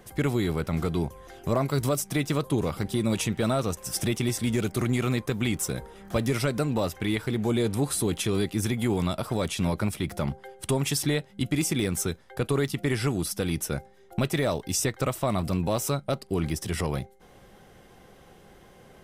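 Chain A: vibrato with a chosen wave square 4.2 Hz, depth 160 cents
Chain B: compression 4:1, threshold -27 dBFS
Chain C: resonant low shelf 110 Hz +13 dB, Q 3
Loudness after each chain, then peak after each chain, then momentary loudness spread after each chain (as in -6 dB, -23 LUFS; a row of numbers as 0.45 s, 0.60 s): -28.0 LUFS, -32.0 LUFS, -24.5 LUFS; -12.5 dBFS, -16.5 dBFS, -5.0 dBFS; 5 LU, 4 LU, 8 LU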